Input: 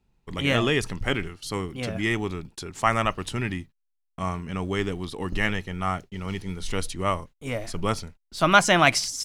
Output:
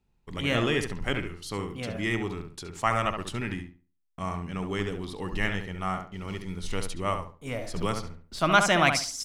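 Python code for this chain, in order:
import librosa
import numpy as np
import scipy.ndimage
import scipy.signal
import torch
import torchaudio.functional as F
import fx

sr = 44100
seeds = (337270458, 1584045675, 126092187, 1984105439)

y = fx.echo_filtered(x, sr, ms=69, feedback_pct=28, hz=2400.0, wet_db=-6.0)
y = fx.band_squash(y, sr, depth_pct=70, at=(7.76, 8.39))
y = y * 10.0 ** (-4.0 / 20.0)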